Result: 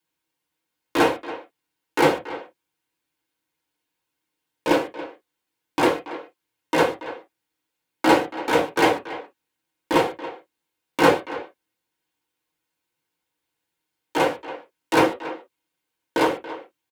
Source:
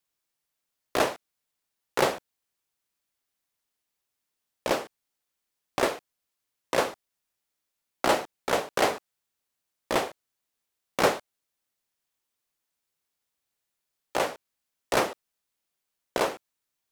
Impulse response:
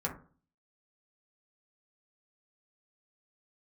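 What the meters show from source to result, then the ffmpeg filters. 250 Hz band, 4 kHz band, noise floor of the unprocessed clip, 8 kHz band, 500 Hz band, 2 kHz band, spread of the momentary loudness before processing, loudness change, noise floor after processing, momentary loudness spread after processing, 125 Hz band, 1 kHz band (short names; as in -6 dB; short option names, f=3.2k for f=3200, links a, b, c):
+12.0 dB, +3.5 dB, -83 dBFS, -0.5 dB, +6.5 dB, +6.5 dB, 12 LU, +6.5 dB, -82 dBFS, 18 LU, +7.5 dB, +6.5 dB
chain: -filter_complex "[0:a]asplit=2[a][b];[b]adelay=280,highpass=300,lowpass=3.4k,asoftclip=type=hard:threshold=-18dB,volume=-13dB[c];[a][c]amix=inputs=2:normalize=0[d];[1:a]atrim=start_sample=2205,afade=t=out:st=0.18:d=0.01,atrim=end_sample=8379,asetrate=83790,aresample=44100[e];[d][e]afir=irnorm=-1:irlink=0,volume=6dB"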